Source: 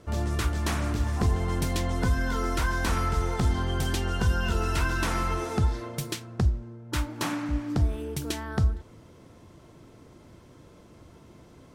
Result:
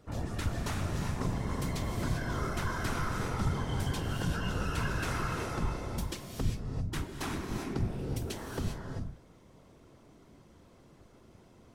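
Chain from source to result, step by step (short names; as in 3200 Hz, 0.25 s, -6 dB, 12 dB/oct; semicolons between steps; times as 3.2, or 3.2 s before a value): whisperiser; non-linear reverb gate 0.42 s rising, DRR 2.5 dB; gain -8 dB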